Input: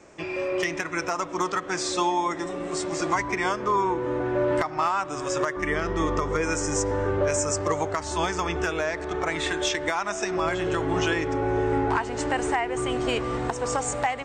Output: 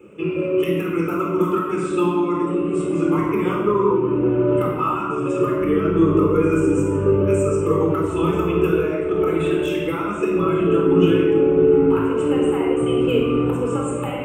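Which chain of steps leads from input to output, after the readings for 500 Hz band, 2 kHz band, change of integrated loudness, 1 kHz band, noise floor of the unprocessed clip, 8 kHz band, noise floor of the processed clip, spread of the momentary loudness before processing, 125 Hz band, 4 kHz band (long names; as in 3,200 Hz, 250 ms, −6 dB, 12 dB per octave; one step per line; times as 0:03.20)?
+9.0 dB, −3.5 dB, +7.0 dB, 0.0 dB, −35 dBFS, −10.0 dB, −25 dBFS, 4 LU, +9.5 dB, −3.5 dB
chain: high-pass filter 62 Hz
dynamic equaliser 2,500 Hz, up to −5 dB, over −42 dBFS, Q 2.1
reverb reduction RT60 1.1 s
drawn EQ curve 110 Hz 0 dB, 170 Hz +9 dB, 460 Hz +8 dB, 770 Hz −12 dB, 1,300 Hz +2 dB, 1,800 Hz −15 dB, 2,700 Hz +8 dB, 4,400 Hz −23 dB, 6,400 Hz −19 dB, 12,000 Hz +14 dB
rectangular room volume 1,900 cubic metres, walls mixed, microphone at 4.1 metres
level −2.5 dB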